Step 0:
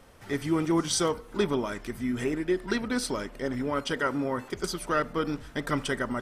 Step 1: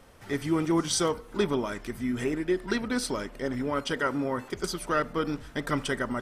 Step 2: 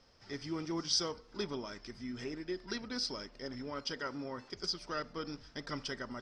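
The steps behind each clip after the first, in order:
no audible change
four-pole ladder low-pass 5.4 kHz, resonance 80%

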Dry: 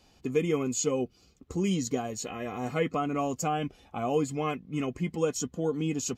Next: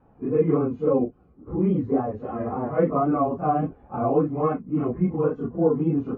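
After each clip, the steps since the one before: phase randomisation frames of 100 ms; vibrato 3.6 Hz 67 cents; low-pass 1.3 kHz 24 dB/octave; trim +7 dB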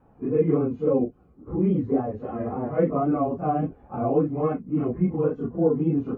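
dynamic bell 1.1 kHz, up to -6 dB, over -39 dBFS, Q 1.4

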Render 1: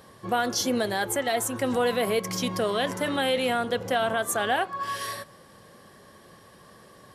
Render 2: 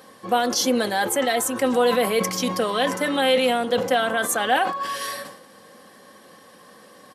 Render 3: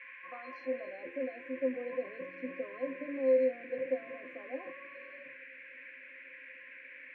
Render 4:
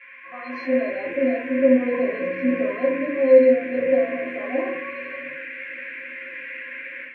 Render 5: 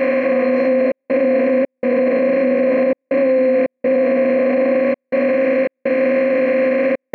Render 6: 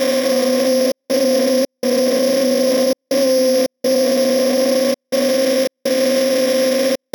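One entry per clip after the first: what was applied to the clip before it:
Bessel high-pass 210 Hz, order 2; comb 3.9 ms, depth 46%; decay stretcher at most 83 dB/s; trim +3.5 dB
band-pass sweep 1.1 kHz -> 420 Hz, 0.45–1.03 s; pitch-class resonator C, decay 0.14 s; band noise 1.6–2.5 kHz -51 dBFS
simulated room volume 200 m³, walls furnished, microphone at 3.1 m; level rider gain up to 10 dB
spectral levelling over time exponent 0.2; peak limiter -12.5 dBFS, peak gain reduction 11.5 dB; trance gate "xxxxx.xxx.x" 82 bpm -60 dB; trim +4 dB
sorted samples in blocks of 8 samples

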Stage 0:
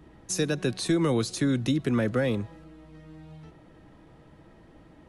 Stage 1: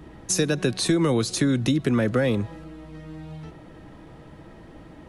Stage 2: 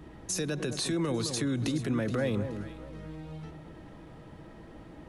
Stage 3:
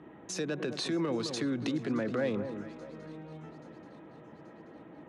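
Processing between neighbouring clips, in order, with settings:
compression 2:1, threshold -29 dBFS, peak gain reduction 5.5 dB; trim +8 dB
peak limiter -18.5 dBFS, peak gain reduction 8.5 dB; echo whose repeats swap between lows and highs 212 ms, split 1.2 kHz, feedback 51%, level -7.5 dB; trim -4 dB
local Wiener filter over 9 samples; band-pass 200–5200 Hz; shuffle delay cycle 831 ms, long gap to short 3:1, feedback 53%, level -23.5 dB

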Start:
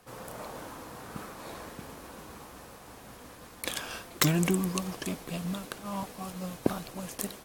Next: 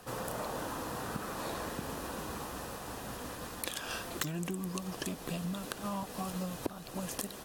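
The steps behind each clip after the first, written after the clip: band-stop 2.2 kHz, Q 9.7; compression 12:1, threshold -40 dBFS, peak gain reduction 22 dB; trim +6.5 dB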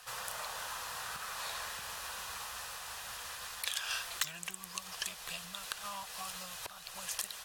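amplifier tone stack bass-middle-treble 10-0-10; overdrive pedal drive 11 dB, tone 5.2 kHz, clips at -10.5 dBFS; trim +1.5 dB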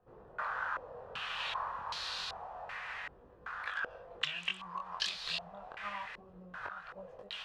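chorus 0.27 Hz, delay 20 ms, depth 4.7 ms; step-sequenced low-pass 2.6 Hz 360–4200 Hz; trim +2.5 dB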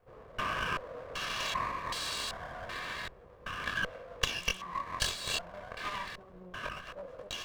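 comb filter that takes the minimum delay 1.8 ms; trim +5 dB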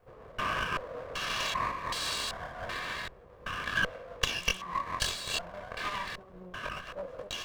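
random flutter of the level, depth 55%; trim +5.5 dB

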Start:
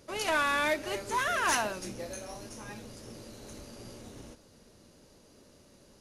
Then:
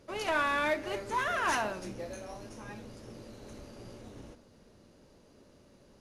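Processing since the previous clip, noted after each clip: treble shelf 4.2 kHz -11 dB; de-hum 78.82 Hz, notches 27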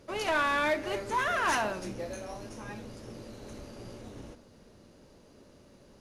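saturation -22 dBFS, distortion -22 dB; trim +3 dB

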